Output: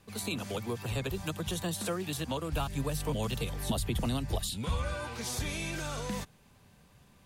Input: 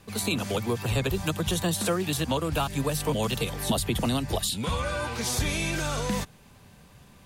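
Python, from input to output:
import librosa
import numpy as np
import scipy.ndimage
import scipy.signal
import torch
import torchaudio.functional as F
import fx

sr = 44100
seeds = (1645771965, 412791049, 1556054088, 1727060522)

y = fx.low_shelf(x, sr, hz=88.0, db=11.5, at=(2.53, 4.95))
y = y * 10.0 ** (-7.5 / 20.0)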